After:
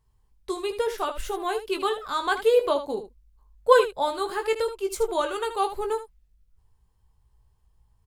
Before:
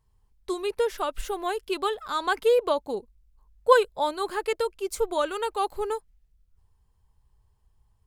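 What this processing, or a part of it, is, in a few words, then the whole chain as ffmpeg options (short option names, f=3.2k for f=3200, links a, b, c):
slapback doubling: -filter_complex "[0:a]asplit=3[a][b][c];[b]adelay=18,volume=-7dB[d];[c]adelay=78,volume=-11dB[e];[a][d][e]amix=inputs=3:normalize=0"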